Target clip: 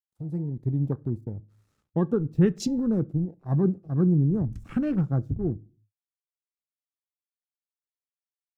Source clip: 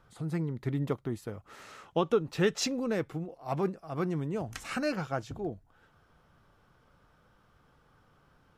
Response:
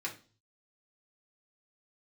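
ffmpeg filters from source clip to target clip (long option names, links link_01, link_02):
-filter_complex "[0:a]aeval=exprs='sgn(val(0))*max(abs(val(0))-0.00266,0)':channel_layout=same,equalizer=frequency=2400:width_type=o:width=2.2:gain=-8.5,afwtdn=0.00708,asubboost=boost=8.5:cutoff=240,asplit=2[link_01][link_02];[1:a]atrim=start_sample=2205[link_03];[link_02][link_03]afir=irnorm=-1:irlink=0,volume=-15dB[link_04];[link_01][link_04]amix=inputs=2:normalize=0"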